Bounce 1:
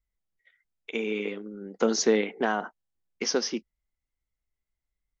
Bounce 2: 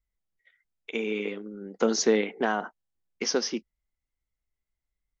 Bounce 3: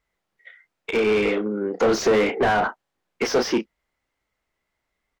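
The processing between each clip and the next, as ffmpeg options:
-af anull
-filter_complex "[0:a]asplit=2[a][b];[b]adelay=33,volume=-10dB[c];[a][c]amix=inputs=2:normalize=0,asplit=2[d][e];[e]highpass=f=720:p=1,volume=29dB,asoftclip=type=tanh:threshold=-9.5dB[f];[d][f]amix=inputs=2:normalize=0,lowpass=f=1.1k:p=1,volume=-6dB"

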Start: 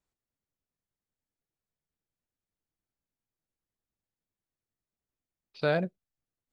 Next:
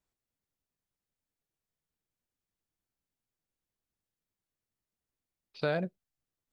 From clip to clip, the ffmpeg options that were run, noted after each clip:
-af "acompressor=threshold=-29dB:ratio=2"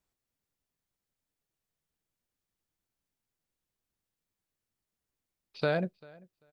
-filter_complex "[0:a]asplit=2[a][b];[b]adelay=392,lowpass=f=4.9k:p=1,volume=-24dB,asplit=2[c][d];[d]adelay=392,lowpass=f=4.9k:p=1,volume=0.18[e];[a][c][e]amix=inputs=3:normalize=0,volume=2dB"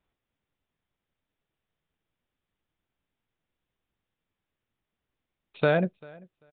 -af "aresample=8000,aresample=44100,volume=6dB"

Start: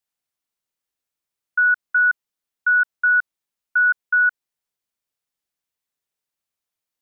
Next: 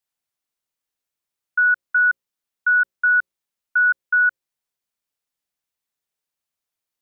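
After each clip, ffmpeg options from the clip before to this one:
-af "bandreject=f=60:t=h:w=6,bandreject=f=120:t=h:w=6,bandreject=f=180:t=h:w=6,bandreject=f=240:t=h:w=6,bandreject=f=300:t=h:w=6,bandreject=f=360:t=h:w=6,bandreject=f=420:t=h:w=6,bandreject=f=480:t=h:w=6,bandreject=f=540:t=h:w=6"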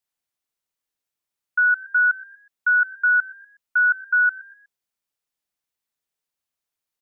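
-filter_complex "[0:a]asplit=4[a][b][c][d];[b]adelay=122,afreqshift=62,volume=-21dB[e];[c]adelay=244,afreqshift=124,volume=-29.2dB[f];[d]adelay=366,afreqshift=186,volume=-37.4dB[g];[a][e][f][g]amix=inputs=4:normalize=0,volume=-1dB"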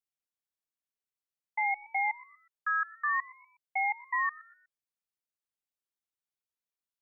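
-af "aeval=exprs='val(0)*sin(2*PI*440*n/s+440*0.6/0.54*sin(2*PI*0.54*n/s))':c=same,volume=-9dB"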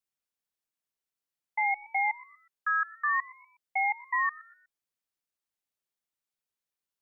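-af "bandreject=f=60:t=h:w=6,bandreject=f=120:t=h:w=6,volume=2dB"

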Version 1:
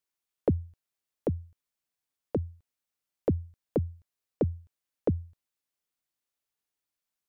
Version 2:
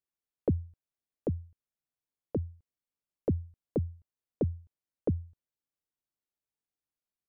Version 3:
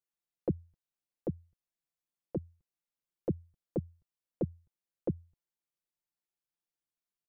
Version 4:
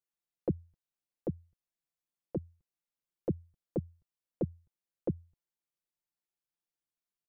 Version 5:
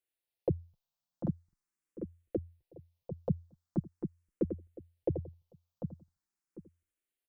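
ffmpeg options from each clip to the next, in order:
-af "tiltshelf=f=800:g=5.5,volume=-6.5dB"
-af "aecho=1:1:5.8:0.61,volume=-4.5dB"
-af anull
-filter_complex "[0:a]asplit=2[a][b];[b]adelay=746,lowpass=f=1.5k:p=1,volume=-6.5dB,asplit=2[c][d];[d]adelay=746,lowpass=f=1.5k:p=1,volume=0.26,asplit=2[e][f];[f]adelay=746,lowpass=f=1.5k:p=1,volume=0.26[g];[c][e][g]amix=inputs=3:normalize=0[h];[a][h]amix=inputs=2:normalize=0,asplit=2[i][j];[j]afreqshift=0.42[k];[i][k]amix=inputs=2:normalize=1,volume=4dB"

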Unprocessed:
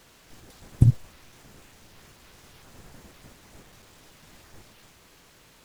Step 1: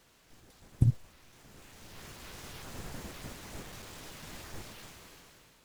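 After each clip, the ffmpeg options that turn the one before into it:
-af "dynaudnorm=f=250:g=7:m=14.5dB,volume=-8.5dB"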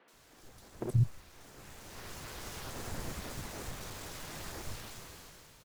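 -filter_complex "[0:a]asoftclip=type=hard:threshold=-24dB,acrossover=split=220|2800[a][b][c];[c]adelay=80[d];[a]adelay=130[e];[e][b][d]amix=inputs=3:normalize=0,volume=3.5dB"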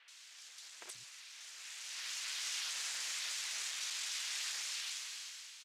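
-af "asuperpass=centerf=4400:order=4:qfactor=0.75,volume=10dB"

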